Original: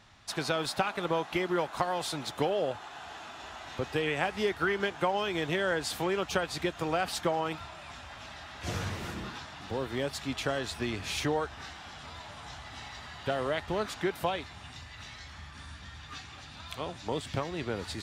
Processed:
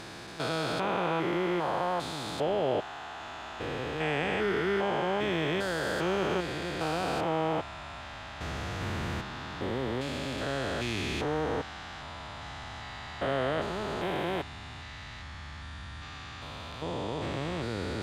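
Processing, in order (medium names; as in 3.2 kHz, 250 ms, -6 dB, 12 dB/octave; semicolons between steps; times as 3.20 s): spectrogram pixelated in time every 400 ms; treble shelf 4.8 kHz -7 dB; band-stop 5.6 kHz, Q 21; trim +5.5 dB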